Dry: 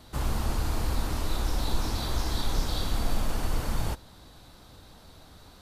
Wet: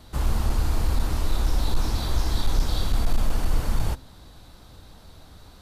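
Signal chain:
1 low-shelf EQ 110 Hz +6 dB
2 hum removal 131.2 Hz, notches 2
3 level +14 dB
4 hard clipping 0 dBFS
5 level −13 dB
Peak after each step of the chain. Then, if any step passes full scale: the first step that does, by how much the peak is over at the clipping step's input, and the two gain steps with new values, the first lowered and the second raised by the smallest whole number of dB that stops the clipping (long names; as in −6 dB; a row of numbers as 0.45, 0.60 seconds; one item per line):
−9.0, −9.0, +5.0, 0.0, −13.0 dBFS
step 3, 5.0 dB
step 3 +9 dB, step 5 −8 dB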